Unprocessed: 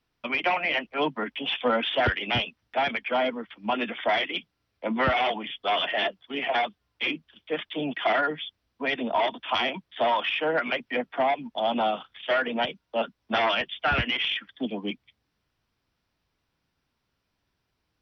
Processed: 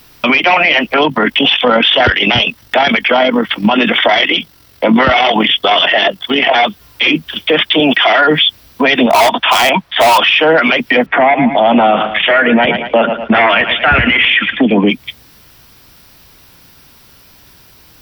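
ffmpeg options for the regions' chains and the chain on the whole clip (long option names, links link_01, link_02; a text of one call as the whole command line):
ffmpeg -i in.wav -filter_complex "[0:a]asettb=1/sr,asplit=3[link_01][link_02][link_03];[link_01]atrim=end=0.944[link_04];[link_02]atrim=start=0.94:end=6.55,asetpts=PTS-STARTPTS,afade=type=in:duration=0.004:curve=qsin,afade=type=out:start_time=5.606:duration=0.004:curve=qsin,bandreject=frequency=2400:width=19,tremolo=f=45:d=0.519[link_05];[link_03]atrim=start=6.546[link_06];[link_04][link_05]acrossfade=duration=0.004:curve1=hsin:curve2=qsin[link_07];[link_07][link_06]acrossfade=duration=0.004:curve1=qsin:curve2=hsin,asettb=1/sr,asplit=3[link_08][link_09][link_10];[link_08]atrim=end=7.804[link_11];[link_09]atrim=start=7.8:end=8.25,asetpts=PTS-STARTPTS,afade=type=in:duration=0.004:curve=qsin,afade=type=out:start_time=0.446:duration=0.004:curve=qsin,highpass=frequency=420:poles=1,bandreject=frequency=4200:width=20[link_12];[link_10]atrim=start=8.246[link_13];[link_11][link_12]acrossfade=duration=0.004:curve1=hsin:curve2=qsin[link_14];[link_14][link_13]acrossfade=duration=0.004:curve1=qsin:curve2=hsin,asettb=1/sr,asplit=3[link_15][link_16][link_17];[link_15]atrim=end=9.064[link_18];[link_16]atrim=start=9.06:end=10.18,asetpts=PTS-STARTPTS,afade=type=in:duration=0.004:curve=qsin,afade=type=out:start_time=1.116:duration=0.004:curve=qsin,lowpass=frequency=1800:poles=1,lowshelf=frequency=550:width_type=q:width=1.5:gain=-7,volume=25.5dB,asoftclip=hard,volume=-25.5dB[link_19];[link_17]atrim=start=10.176[link_20];[link_18][link_19]acrossfade=duration=0.004:curve1=hsin:curve2=qsin[link_21];[link_21][link_20]acrossfade=duration=0.004:curve1=qsin:curve2=hsin,asettb=1/sr,asplit=3[link_22][link_23][link_24];[link_22]atrim=end=11.064[link_25];[link_23]atrim=start=11.06:end=14.9,asetpts=PTS-STARTPTS,afade=type=in:duration=0.004:curve=qsin,afade=type=out:start_time=3.836:duration=0.004:curve=qsin,lowpass=frequency=2100:width_type=q:width=2.3,tiltshelf=frequency=970:gain=3.5,aecho=1:1:112|224:0.126|0.0352,atrim=end_sample=169344[link_26];[link_24]atrim=start=14.896[link_27];[link_25][link_26]acrossfade=duration=0.004:curve1=hsin:curve2=qsin[link_28];[link_28][link_27]acrossfade=duration=0.004:curve1=qsin:curve2=hsin,aemphasis=mode=production:type=50fm,acompressor=threshold=-30dB:ratio=6,alimiter=level_in=31.5dB:limit=-1dB:release=50:level=0:latency=1,volume=-1dB" out.wav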